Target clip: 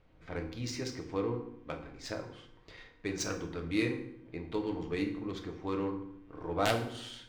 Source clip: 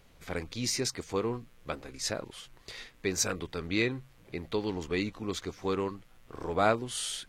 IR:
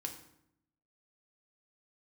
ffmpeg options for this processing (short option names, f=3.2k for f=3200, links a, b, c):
-filter_complex "[0:a]aeval=exprs='(mod(4.22*val(0)+1,2)-1)/4.22':c=same,adynamicsmooth=sensitivity=2.5:basefreq=2.7k[a];[1:a]atrim=start_sample=2205[b];[a][b]afir=irnorm=-1:irlink=0,volume=-2dB"